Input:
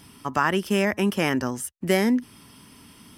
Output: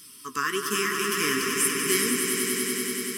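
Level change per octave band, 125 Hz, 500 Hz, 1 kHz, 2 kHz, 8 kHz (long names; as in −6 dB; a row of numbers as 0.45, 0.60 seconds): −10.0, −3.0, −2.5, +2.0, +12.5 decibels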